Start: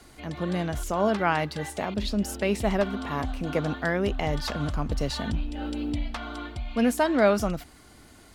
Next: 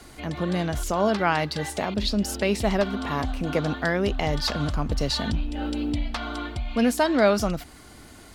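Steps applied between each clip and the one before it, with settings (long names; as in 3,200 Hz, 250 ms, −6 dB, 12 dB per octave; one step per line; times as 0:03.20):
dynamic equaliser 4,600 Hz, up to +6 dB, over −48 dBFS, Q 1.6
in parallel at −2 dB: downward compressor, threshold −33 dBFS, peak gain reduction 16.5 dB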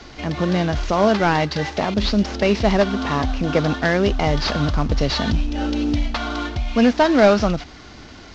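variable-slope delta modulation 32 kbit/s
level +6.5 dB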